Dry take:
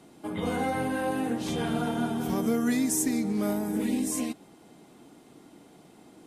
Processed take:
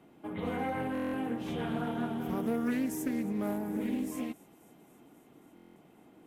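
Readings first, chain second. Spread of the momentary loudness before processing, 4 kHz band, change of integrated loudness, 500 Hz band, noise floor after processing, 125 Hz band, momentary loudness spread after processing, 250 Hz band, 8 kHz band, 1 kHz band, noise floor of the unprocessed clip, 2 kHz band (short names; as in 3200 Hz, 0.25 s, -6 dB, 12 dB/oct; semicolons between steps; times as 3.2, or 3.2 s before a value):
6 LU, -9.5 dB, -5.5 dB, -5.0 dB, -60 dBFS, -5.0 dB, 6 LU, -5.0 dB, -16.5 dB, -5.5 dB, -55 dBFS, -5.5 dB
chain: band shelf 6300 Hz -11 dB; on a send: thin delay 0.27 s, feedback 77%, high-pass 4300 Hz, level -19 dB; on the sum: stuck buffer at 0.93/5.55, samples 1024, times 8; Doppler distortion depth 0.2 ms; gain -5 dB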